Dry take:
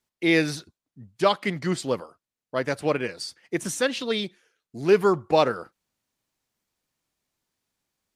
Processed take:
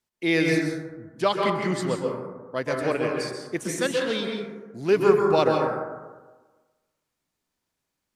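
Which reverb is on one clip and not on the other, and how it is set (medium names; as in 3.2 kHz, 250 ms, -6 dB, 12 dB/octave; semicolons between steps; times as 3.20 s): plate-style reverb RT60 1.3 s, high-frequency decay 0.3×, pre-delay 115 ms, DRR 0.5 dB; trim -2.5 dB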